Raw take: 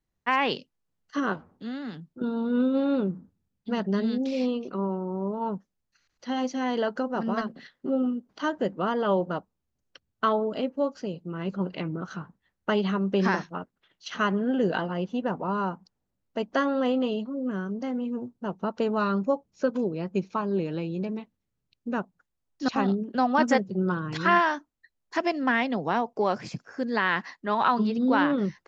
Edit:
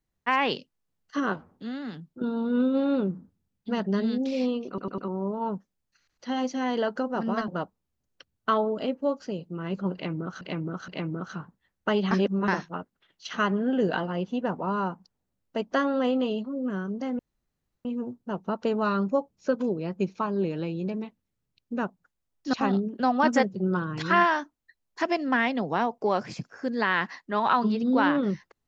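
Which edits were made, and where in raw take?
0:04.68: stutter in place 0.10 s, 4 plays
0:07.48–0:09.23: remove
0:11.69–0:12.16: repeat, 3 plays
0:12.92–0:13.29: reverse
0:18.00: splice in room tone 0.66 s

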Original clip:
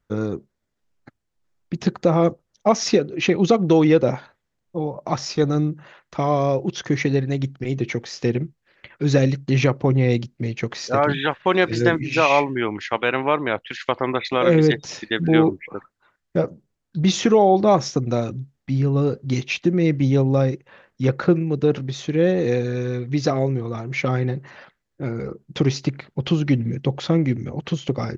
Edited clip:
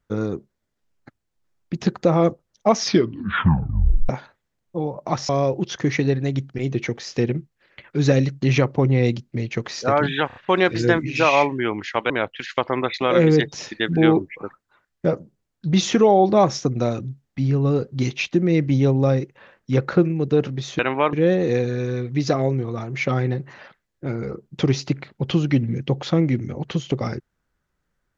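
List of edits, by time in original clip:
0:02.79: tape stop 1.30 s
0:05.29–0:06.35: remove
0:11.33: stutter 0.03 s, 4 plays
0:13.07–0:13.41: move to 0:22.10

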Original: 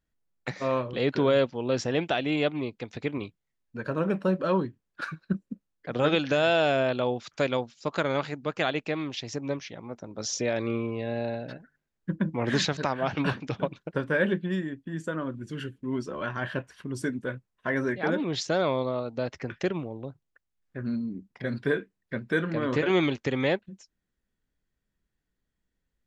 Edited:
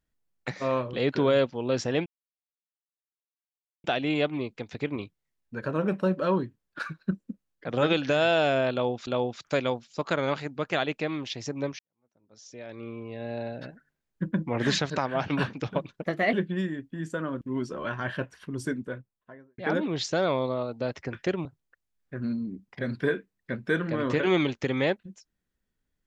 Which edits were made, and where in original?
0:02.06: splice in silence 1.78 s
0:06.94–0:07.29: repeat, 2 plays
0:09.66–0:11.55: fade in quadratic
0:13.89–0:14.27: play speed 122%
0:15.35–0:15.78: remove
0:16.93–0:17.95: fade out and dull
0:19.82–0:20.08: remove

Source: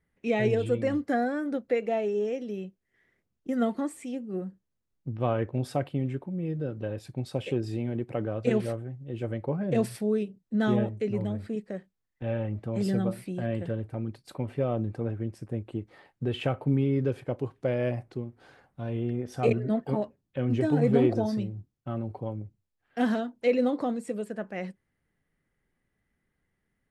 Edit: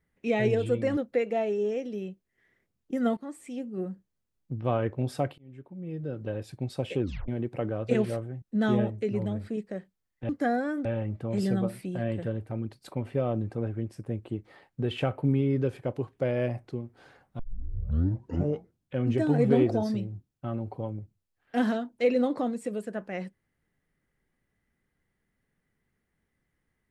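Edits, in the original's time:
0:00.97–0:01.53: move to 0:12.28
0:03.73–0:04.21: fade in, from −14.5 dB
0:05.94–0:06.86: fade in
0:07.58: tape stop 0.26 s
0:08.98–0:10.41: remove
0:18.82: tape start 1.57 s

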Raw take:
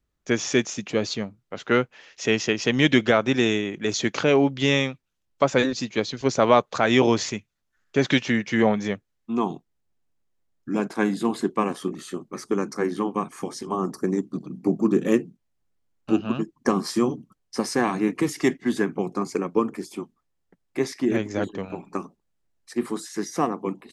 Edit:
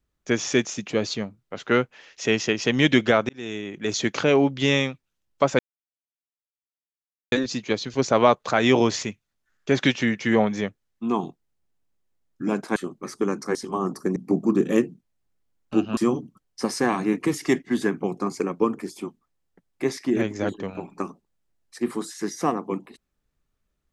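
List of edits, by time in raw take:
0:03.29–0:03.96: fade in linear
0:05.59: splice in silence 1.73 s
0:11.03–0:12.06: remove
0:12.85–0:13.53: remove
0:14.14–0:14.52: remove
0:16.33–0:16.92: remove

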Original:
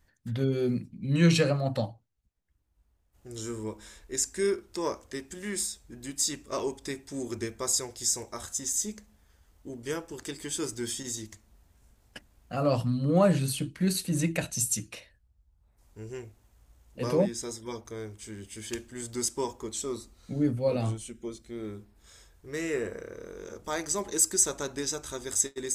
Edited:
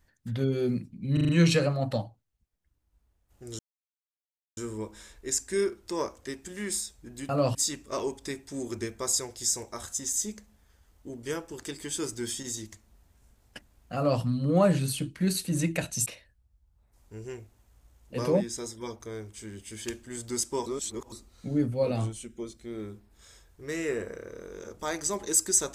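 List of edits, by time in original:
0:01.13: stutter 0.04 s, 5 plays
0:03.43: splice in silence 0.98 s
0:12.56–0:12.82: duplicate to 0:06.15
0:14.66–0:14.91: remove
0:19.51–0:19.97: reverse

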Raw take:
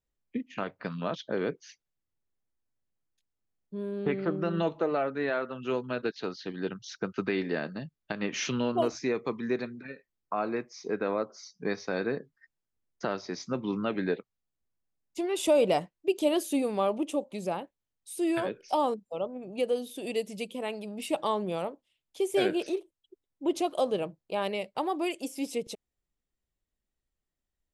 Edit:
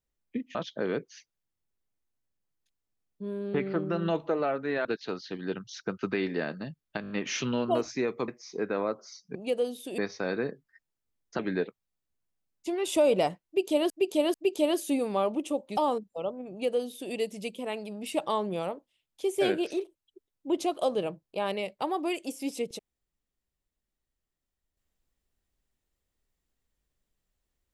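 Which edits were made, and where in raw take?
0:00.55–0:01.07: remove
0:05.37–0:06.00: remove
0:08.17: stutter 0.02 s, 5 plays
0:09.35–0:10.59: remove
0:13.07–0:13.90: remove
0:15.97–0:16.41: repeat, 3 plays
0:17.40–0:18.73: remove
0:19.46–0:20.09: duplicate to 0:11.66

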